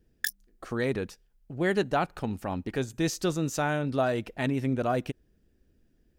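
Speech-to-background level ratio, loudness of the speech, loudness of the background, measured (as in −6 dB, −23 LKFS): 4.5 dB, −29.5 LKFS, −34.0 LKFS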